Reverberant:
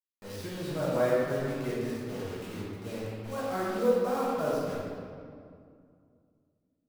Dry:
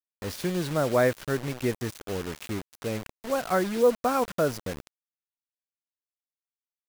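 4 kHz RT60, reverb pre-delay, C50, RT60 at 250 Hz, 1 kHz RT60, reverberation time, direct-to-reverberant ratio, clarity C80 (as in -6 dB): 1.4 s, 5 ms, -3.0 dB, 3.0 s, 2.2 s, 2.3 s, -9.0 dB, -0.5 dB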